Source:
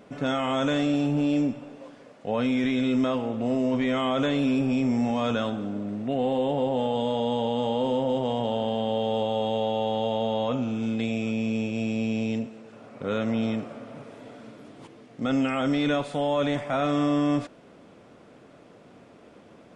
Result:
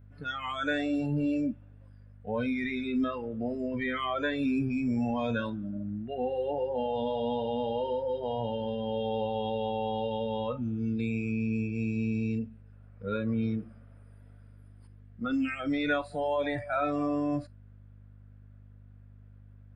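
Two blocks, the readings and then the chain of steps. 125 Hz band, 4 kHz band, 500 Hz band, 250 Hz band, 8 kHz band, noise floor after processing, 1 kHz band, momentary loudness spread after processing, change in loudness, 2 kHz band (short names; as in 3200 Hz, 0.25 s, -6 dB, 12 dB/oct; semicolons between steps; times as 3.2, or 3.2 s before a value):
-3.5 dB, -8.0 dB, -5.0 dB, -5.5 dB, n/a, -52 dBFS, -4.5 dB, 7 LU, -5.0 dB, -1.0 dB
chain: spectral noise reduction 21 dB; hum 50 Hz, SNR 23 dB; fifteen-band EQ 100 Hz +9 dB, 1600 Hz +11 dB, 6300 Hz -9 dB; gain -4 dB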